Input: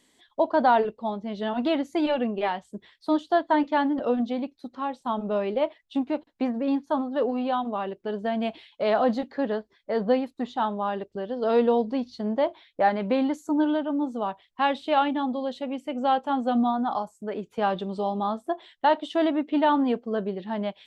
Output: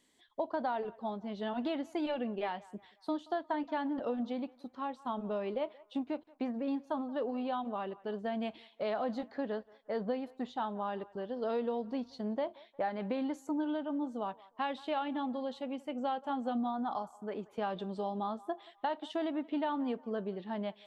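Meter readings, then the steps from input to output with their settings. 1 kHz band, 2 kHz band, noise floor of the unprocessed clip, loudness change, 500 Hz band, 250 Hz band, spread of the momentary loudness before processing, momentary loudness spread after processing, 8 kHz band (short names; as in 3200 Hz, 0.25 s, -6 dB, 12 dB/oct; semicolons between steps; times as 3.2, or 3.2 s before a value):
-11.5 dB, -11.5 dB, -67 dBFS, -10.5 dB, -10.5 dB, -10.0 dB, 9 LU, 6 LU, n/a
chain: compressor, threshold -23 dBFS, peak gain reduction 8.5 dB; narrowing echo 0.178 s, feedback 50%, band-pass 1100 Hz, level -20 dB; gain -7.5 dB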